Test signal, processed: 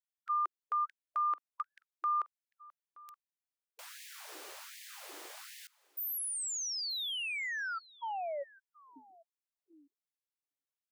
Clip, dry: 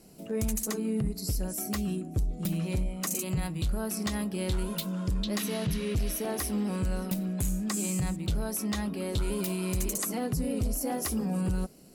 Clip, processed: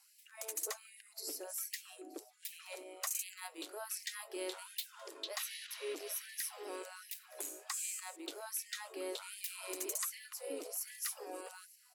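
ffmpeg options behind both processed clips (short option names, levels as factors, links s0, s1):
-af "aecho=1:1:924:0.075,afftfilt=real='re*gte(b*sr/1024,260*pow(1700/260,0.5+0.5*sin(2*PI*1.3*pts/sr)))':imag='im*gte(b*sr/1024,260*pow(1700/260,0.5+0.5*sin(2*PI*1.3*pts/sr)))':win_size=1024:overlap=0.75,volume=0.531"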